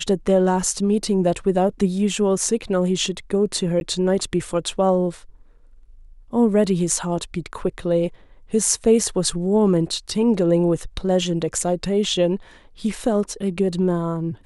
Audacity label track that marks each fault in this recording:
3.800000	3.810000	gap 11 ms

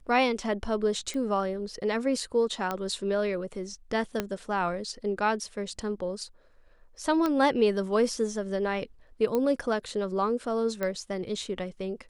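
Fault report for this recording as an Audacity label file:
1.140000	1.140000	pop -24 dBFS
2.710000	2.710000	pop -16 dBFS
4.200000	4.200000	pop -13 dBFS
7.260000	7.260000	pop -15 dBFS
9.350000	9.350000	pop -16 dBFS
10.830000	10.830000	pop -17 dBFS

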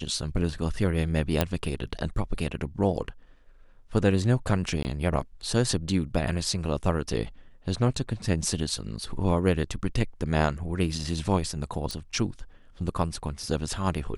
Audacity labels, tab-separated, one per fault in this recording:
1.410000	1.410000	pop -8 dBFS
4.830000	4.850000	gap 19 ms
11.910000	11.910000	pop

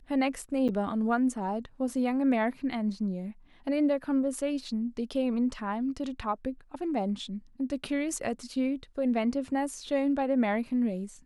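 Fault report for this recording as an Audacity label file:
0.680000	0.690000	gap 7.8 ms

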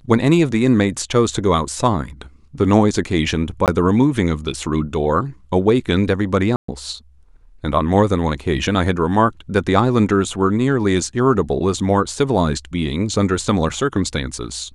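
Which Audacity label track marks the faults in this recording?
3.660000	3.680000	gap 18 ms
6.560000	6.680000	gap 0.124 s

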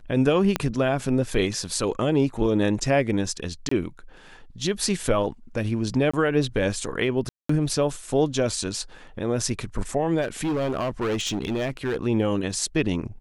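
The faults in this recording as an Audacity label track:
0.560000	0.560000	pop -8 dBFS
3.690000	3.710000	gap 24 ms
6.110000	6.130000	gap 25 ms
7.290000	7.490000	gap 0.204 s
10.210000	11.970000	clipped -22 dBFS

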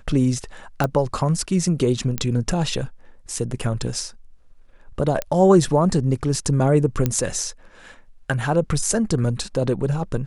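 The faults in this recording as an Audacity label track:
0.840000	0.840000	pop -9 dBFS
2.180000	2.180000	pop -10 dBFS
5.220000	5.220000	pop -9 dBFS
7.060000	7.060000	pop -7 dBFS

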